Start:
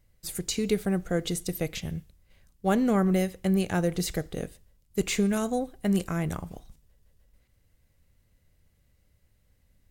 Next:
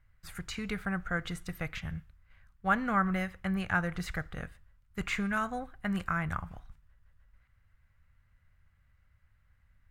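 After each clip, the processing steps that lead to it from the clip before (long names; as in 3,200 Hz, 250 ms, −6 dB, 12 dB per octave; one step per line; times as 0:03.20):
drawn EQ curve 100 Hz 0 dB, 410 Hz −16 dB, 1,400 Hz +9 dB, 3,700 Hz −9 dB, 5,900 Hz −14 dB, 10,000 Hz −16 dB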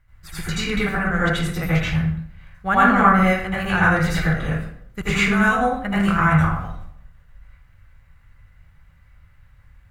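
convolution reverb RT60 0.65 s, pre-delay 75 ms, DRR −9 dB
level +5.5 dB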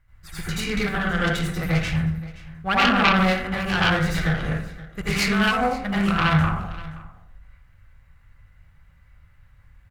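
phase distortion by the signal itself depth 0.32 ms
single-tap delay 525 ms −19 dB
level −2 dB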